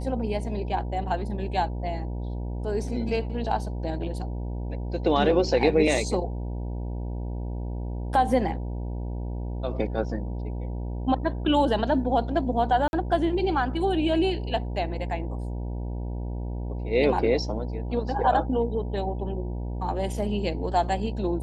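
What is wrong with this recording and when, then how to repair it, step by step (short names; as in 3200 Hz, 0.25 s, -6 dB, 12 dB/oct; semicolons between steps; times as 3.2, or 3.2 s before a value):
buzz 60 Hz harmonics 16 -31 dBFS
12.88–12.93 gap 51 ms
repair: de-hum 60 Hz, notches 16; interpolate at 12.88, 51 ms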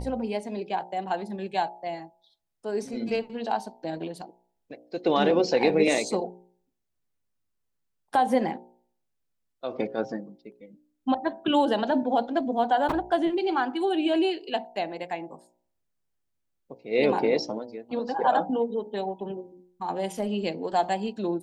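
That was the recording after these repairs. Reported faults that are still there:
none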